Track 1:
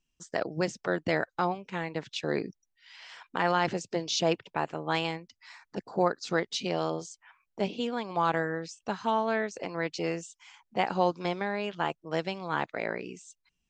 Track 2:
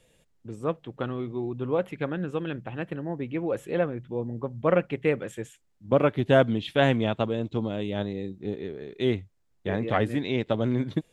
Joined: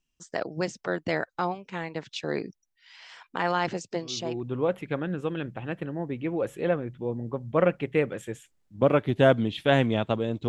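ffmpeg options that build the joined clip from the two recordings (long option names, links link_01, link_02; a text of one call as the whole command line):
ffmpeg -i cue0.wav -i cue1.wav -filter_complex "[0:a]apad=whole_dur=10.48,atrim=end=10.48,atrim=end=4.44,asetpts=PTS-STARTPTS[link_01];[1:a]atrim=start=1.08:end=7.58,asetpts=PTS-STARTPTS[link_02];[link_01][link_02]acrossfade=duration=0.46:curve1=tri:curve2=tri" out.wav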